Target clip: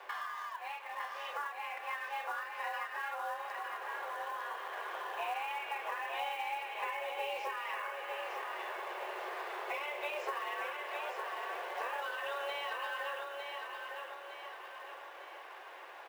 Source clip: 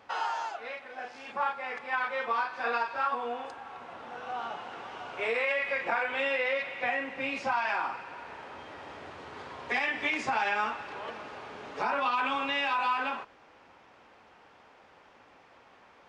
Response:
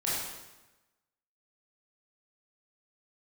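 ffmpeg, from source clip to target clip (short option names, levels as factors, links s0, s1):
-filter_complex "[0:a]afreqshift=290,highshelf=f=3400:g=-11.5,bandreject=f=1300:w=6.5,asplit=2[s0][s1];[s1]adelay=468,lowpass=f=3900:p=1,volume=0.0631,asplit=2[s2][s3];[s3]adelay=468,lowpass=f=3900:p=1,volume=0.26[s4];[s2][s4]amix=inputs=2:normalize=0[s5];[s0][s5]amix=inputs=2:normalize=0,acrossover=split=400[s6][s7];[s7]acompressor=threshold=0.00355:ratio=5[s8];[s6][s8]amix=inputs=2:normalize=0,highpass=99,acrusher=bits=5:mode=log:mix=0:aa=0.000001,asplit=2[s9][s10];[s10]aecho=0:1:906|1812|2718|3624|4530|5436:0.562|0.259|0.119|0.0547|0.0252|0.0116[s11];[s9][s11]amix=inputs=2:normalize=0,volume=2.51"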